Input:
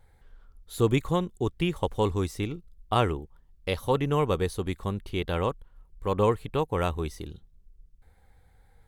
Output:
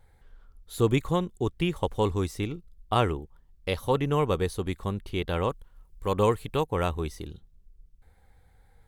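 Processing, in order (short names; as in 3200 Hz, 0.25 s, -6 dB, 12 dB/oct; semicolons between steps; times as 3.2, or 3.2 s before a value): 5.5–6.64 high shelf 3800 Hz +7.5 dB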